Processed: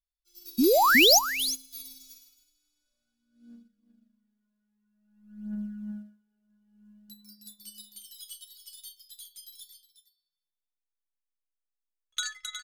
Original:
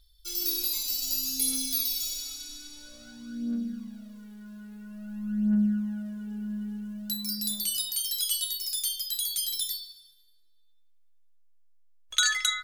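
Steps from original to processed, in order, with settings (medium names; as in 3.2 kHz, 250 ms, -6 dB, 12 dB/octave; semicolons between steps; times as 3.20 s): painted sound rise, 0.58–1.19 s, 220–7100 Hz -18 dBFS; delay 364 ms -4.5 dB; upward expansion 2.5:1, over -39 dBFS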